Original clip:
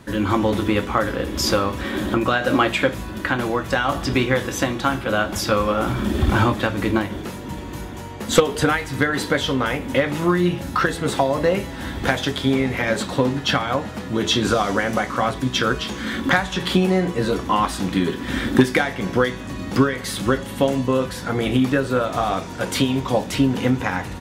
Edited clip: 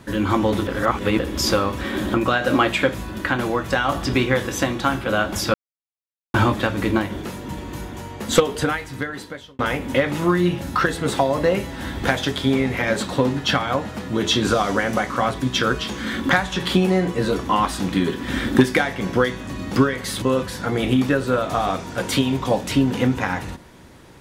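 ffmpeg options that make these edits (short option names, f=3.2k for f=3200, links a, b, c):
-filter_complex "[0:a]asplit=7[a][b][c][d][e][f][g];[a]atrim=end=0.672[h];[b]atrim=start=0.668:end=1.192,asetpts=PTS-STARTPTS,areverse[i];[c]atrim=start=1.188:end=5.54,asetpts=PTS-STARTPTS,afade=t=out:st=4.348:d=0.004:c=hsin[j];[d]atrim=start=5.54:end=6.34,asetpts=PTS-STARTPTS,volume=0[k];[e]atrim=start=6.34:end=9.59,asetpts=PTS-STARTPTS,afade=t=in:d=0.004:c=hsin,afade=t=out:st=1.93:d=1.32[l];[f]atrim=start=9.59:end=20.222,asetpts=PTS-STARTPTS,afade=t=in:d=0.004:c=hsin[m];[g]atrim=start=20.848[n];[h][i]acrossfade=d=0.004:c1=hsin:c2=hsin[o];[j][k][l][m]concat=n=4:v=0:a=1[p];[o][p]acrossfade=d=0.004:c1=hsin:c2=hsin[q];[q][n]acrossfade=d=0.004:c1=hsin:c2=hsin"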